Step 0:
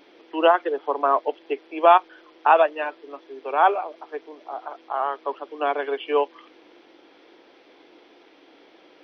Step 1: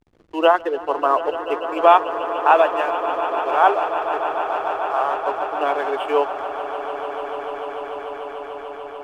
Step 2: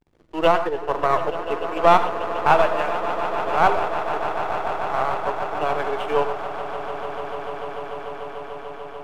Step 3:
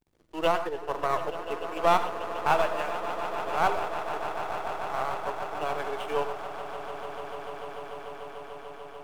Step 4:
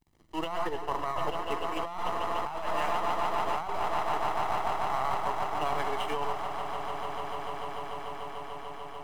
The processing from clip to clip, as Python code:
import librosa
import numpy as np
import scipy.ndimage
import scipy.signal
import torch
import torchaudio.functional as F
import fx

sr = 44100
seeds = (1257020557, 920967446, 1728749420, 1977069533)

y1 = fx.backlash(x, sr, play_db=-40.5)
y1 = fx.echo_swell(y1, sr, ms=147, loudest=8, wet_db=-14.5)
y1 = y1 * 10.0 ** (2.0 / 20.0)
y2 = np.where(y1 < 0.0, 10.0 ** (-7.0 / 20.0) * y1, y1)
y2 = fx.rev_gated(y2, sr, seeds[0], gate_ms=130, shape='rising', drr_db=9.5)
y3 = fx.high_shelf(y2, sr, hz=5200.0, db=11.5)
y3 = y3 * 10.0 ** (-8.0 / 20.0)
y4 = y3 + 0.47 * np.pad(y3, (int(1.0 * sr / 1000.0), 0))[:len(y3)]
y4 = fx.over_compress(y4, sr, threshold_db=-29.0, ratio=-1.0)